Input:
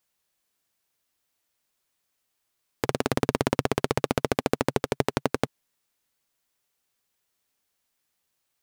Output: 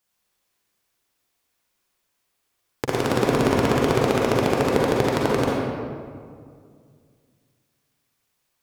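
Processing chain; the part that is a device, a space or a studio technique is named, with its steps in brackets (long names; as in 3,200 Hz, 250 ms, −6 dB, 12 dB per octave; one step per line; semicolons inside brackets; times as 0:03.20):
stairwell (convolution reverb RT60 2.1 s, pre-delay 39 ms, DRR −4.5 dB)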